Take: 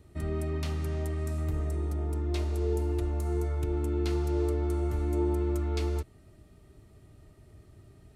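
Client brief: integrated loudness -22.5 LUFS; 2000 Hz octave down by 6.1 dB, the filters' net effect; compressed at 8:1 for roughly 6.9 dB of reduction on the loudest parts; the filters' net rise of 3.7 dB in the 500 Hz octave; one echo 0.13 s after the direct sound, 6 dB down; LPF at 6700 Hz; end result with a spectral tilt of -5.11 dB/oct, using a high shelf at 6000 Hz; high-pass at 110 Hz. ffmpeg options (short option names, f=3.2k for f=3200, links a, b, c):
-af "highpass=110,lowpass=6.7k,equalizer=f=500:t=o:g=6,equalizer=f=2k:t=o:g=-7,highshelf=f=6k:g=-7.5,acompressor=threshold=-30dB:ratio=8,aecho=1:1:130:0.501,volume=12dB"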